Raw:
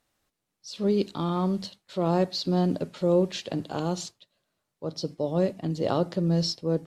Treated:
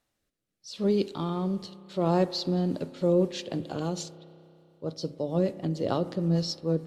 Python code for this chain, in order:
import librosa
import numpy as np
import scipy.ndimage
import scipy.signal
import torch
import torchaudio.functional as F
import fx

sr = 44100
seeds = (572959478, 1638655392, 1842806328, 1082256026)

y = fx.rotary_switch(x, sr, hz=0.8, then_hz=6.7, switch_at_s=2.39)
y = fx.rev_spring(y, sr, rt60_s=2.8, pass_ms=(31,), chirp_ms=75, drr_db=15.0)